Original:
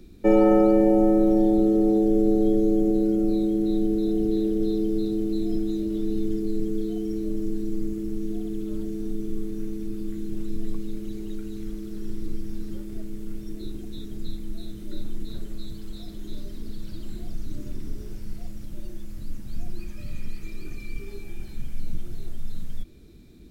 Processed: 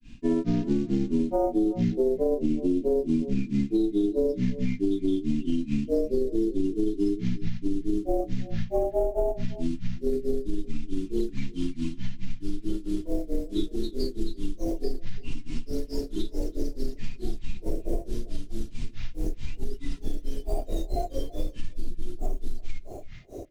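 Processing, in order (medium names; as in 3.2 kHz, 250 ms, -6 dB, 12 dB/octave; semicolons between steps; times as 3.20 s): CVSD coder 64 kbps; high-order bell 1.2 kHz -11.5 dB 2.4 oct; in parallel at -1 dB: gain riding within 5 dB; on the sum: granulator 231 ms, grains 4.6 per s, pitch spread up and down by 12 st; tone controls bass -9 dB, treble -9 dB; comb 2.9 ms, depth 37%; echo from a far wall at 57 m, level -23 dB; on a send at -23.5 dB: reverberation RT60 0.40 s, pre-delay 3 ms; on the sum: peak limiter -19 dBFS, peak gain reduction 9 dB; compression, threshold -28 dBFS, peak gain reduction 7 dB; trim +7.5 dB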